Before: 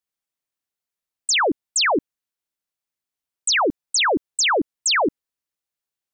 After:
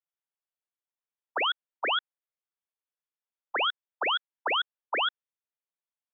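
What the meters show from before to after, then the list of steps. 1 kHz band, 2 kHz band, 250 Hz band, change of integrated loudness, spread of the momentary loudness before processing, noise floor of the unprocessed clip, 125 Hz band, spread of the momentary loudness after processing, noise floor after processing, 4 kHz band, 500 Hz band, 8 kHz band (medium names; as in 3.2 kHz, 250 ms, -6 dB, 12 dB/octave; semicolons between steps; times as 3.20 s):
-7.5 dB, -8.0 dB, -23.5 dB, -9.5 dB, 6 LU, under -85 dBFS, under -25 dB, 3 LU, under -85 dBFS, -7.5 dB, -13.5 dB, under -40 dB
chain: frequency inversion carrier 2.7 kHz; ring modulator 950 Hz; high-pass 400 Hz 24 dB/octave; trim -4.5 dB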